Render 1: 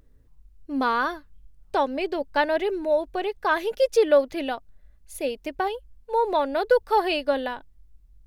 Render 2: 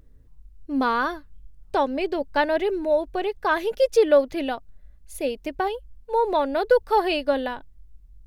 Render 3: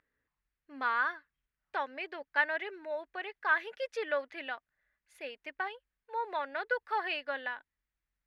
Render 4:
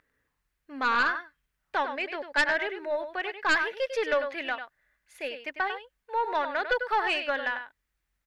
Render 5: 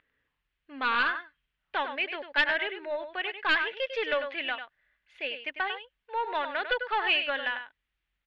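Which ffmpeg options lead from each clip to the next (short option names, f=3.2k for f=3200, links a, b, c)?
-af "lowshelf=f=300:g=5"
-af "bandpass=f=1.8k:t=q:w=2.4:csg=0"
-af "aecho=1:1:98:0.335,aeval=exprs='0.168*(cos(1*acos(clip(val(0)/0.168,-1,1)))-cos(1*PI/2))+0.0841*(cos(2*acos(clip(val(0)/0.168,-1,1)))-cos(2*PI/2))+0.0473*(cos(5*acos(clip(val(0)/0.168,-1,1)))-cos(5*PI/2))':c=same"
-af "lowpass=f=3.1k:t=q:w=2.8,volume=-3.5dB"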